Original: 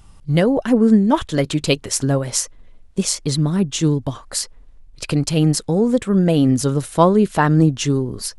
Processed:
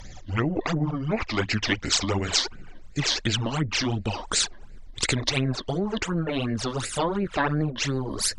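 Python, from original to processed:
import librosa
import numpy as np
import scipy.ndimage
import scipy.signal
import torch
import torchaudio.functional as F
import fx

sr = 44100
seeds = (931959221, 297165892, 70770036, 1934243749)

y = fx.pitch_glide(x, sr, semitones=-7.5, runs='ending unshifted')
y = fx.phaser_stages(y, sr, stages=12, low_hz=130.0, high_hz=1100.0, hz=2.8, feedback_pct=25)
y = fx.env_lowpass_down(y, sr, base_hz=1100.0, full_db=-13.0)
y = fx.rider(y, sr, range_db=4, speed_s=2.0)
y = fx.spectral_comp(y, sr, ratio=2.0)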